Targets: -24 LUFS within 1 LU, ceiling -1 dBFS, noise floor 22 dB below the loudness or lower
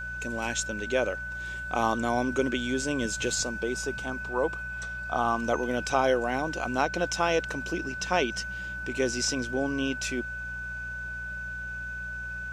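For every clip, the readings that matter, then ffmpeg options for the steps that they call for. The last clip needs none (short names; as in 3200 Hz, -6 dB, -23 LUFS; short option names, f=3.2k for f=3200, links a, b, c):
hum 60 Hz; harmonics up to 180 Hz; hum level -41 dBFS; steady tone 1500 Hz; tone level -34 dBFS; loudness -29.5 LUFS; peak -10.5 dBFS; loudness target -24.0 LUFS
-> -af "bandreject=f=60:t=h:w=4,bandreject=f=120:t=h:w=4,bandreject=f=180:t=h:w=4"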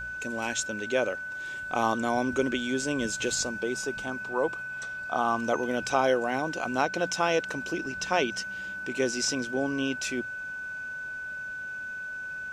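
hum none; steady tone 1500 Hz; tone level -34 dBFS
-> -af "bandreject=f=1.5k:w=30"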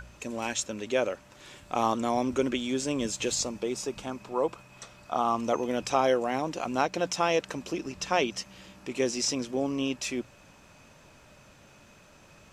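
steady tone none; loudness -29.5 LUFS; peak -10.0 dBFS; loudness target -24.0 LUFS
-> -af "volume=5.5dB"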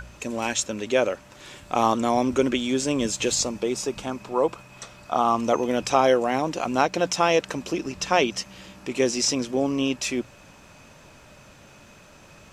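loudness -24.0 LUFS; peak -4.5 dBFS; noise floor -50 dBFS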